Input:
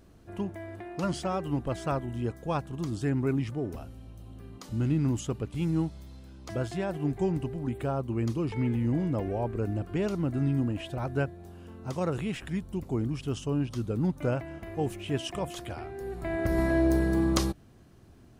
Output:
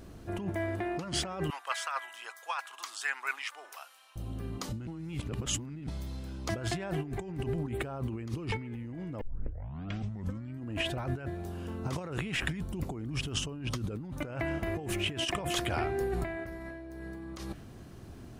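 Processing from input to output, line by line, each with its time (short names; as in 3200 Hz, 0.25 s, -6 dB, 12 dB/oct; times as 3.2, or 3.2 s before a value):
1.5–4.16 HPF 1000 Hz 24 dB/oct
4.87–5.87 reverse
9.21 tape start 1.41 s
whole clip: dynamic EQ 2000 Hz, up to +6 dB, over -48 dBFS, Q 0.83; negative-ratio compressor -37 dBFS, ratio -1; gain +1 dB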